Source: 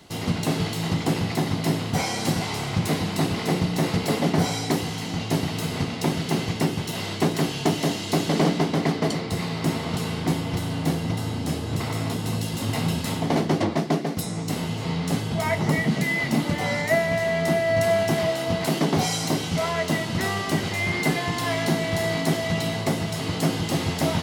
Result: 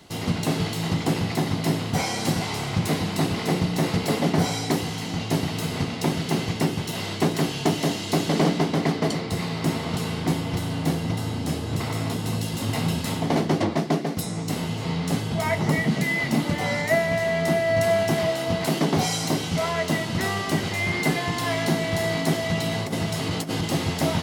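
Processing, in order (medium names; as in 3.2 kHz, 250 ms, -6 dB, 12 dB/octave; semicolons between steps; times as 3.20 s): 22.71–23.65 s: compressor with a negative ratio -25 dBFS, ratio -0.5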